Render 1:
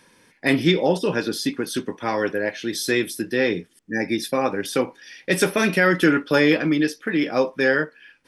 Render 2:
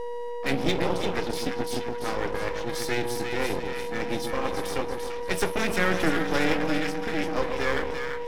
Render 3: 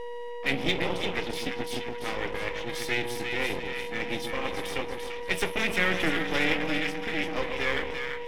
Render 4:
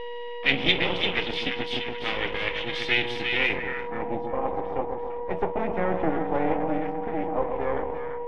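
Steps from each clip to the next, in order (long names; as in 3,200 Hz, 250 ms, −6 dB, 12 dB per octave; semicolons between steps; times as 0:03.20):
echo with a time of its own for lows and highs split 1,100 Hz, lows 135 ms, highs 342 ms, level −5.5 dB; steady tone 480 Hz −22 dBFS; half-wave rectification; level −4 dB
flat-topped bell 2,600 Hz +8 dB 1.1 octaves; level −4 dB
low-pass filter sweep 3,200 Hz → 820 Hz, 0:03.36–0:04.10; level +1.5 dB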